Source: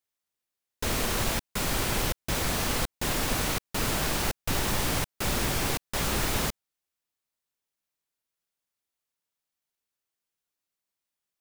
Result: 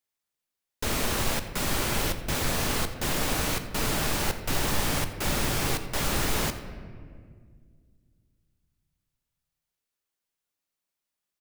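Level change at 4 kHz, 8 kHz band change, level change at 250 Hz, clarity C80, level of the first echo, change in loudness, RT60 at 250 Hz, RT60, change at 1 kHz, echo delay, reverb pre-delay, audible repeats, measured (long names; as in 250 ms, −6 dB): +0.5 dB, +0.5 dB, +1.0 dB, 11.0 dB, −18.5 dB, +0.5 dB, 2.8 s, 2.0 s, +0.5 dB, 88 ms, 3 ms, 1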